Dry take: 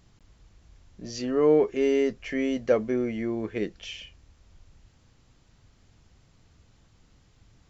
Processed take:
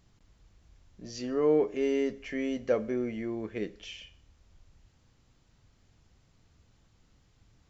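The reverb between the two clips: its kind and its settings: Schroeder reverb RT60 0.55 s, combs from 29 ms, DRR 16.5 dB; gain -5 dB

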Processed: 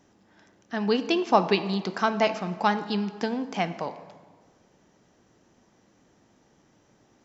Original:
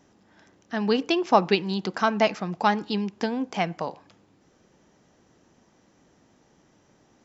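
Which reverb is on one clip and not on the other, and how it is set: plate-style reverb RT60 1.6 s, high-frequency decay 0.65×, DRR 11 dB; gain -1.5 dB

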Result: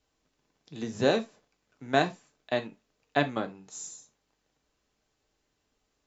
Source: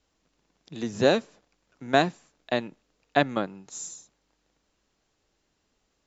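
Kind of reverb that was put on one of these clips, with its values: non-linear reverb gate 0.1 s falling, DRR 6 dB; gain -4 dB

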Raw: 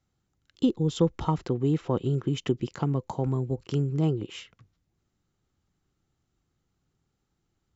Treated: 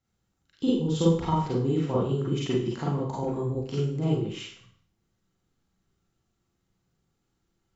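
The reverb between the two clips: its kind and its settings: Schroeder reverb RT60 0.51 s, combs from 33 ms, DRR -6.5 dB; gain -5.5 dB

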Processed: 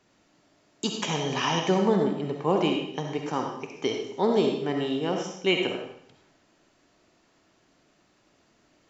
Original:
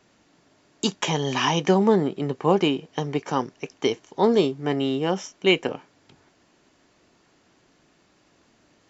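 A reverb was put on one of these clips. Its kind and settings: digital reverb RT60 0.68 s, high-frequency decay 0.95×, pre-delay 25 ms, DRR 2 dB; gain -5 dB

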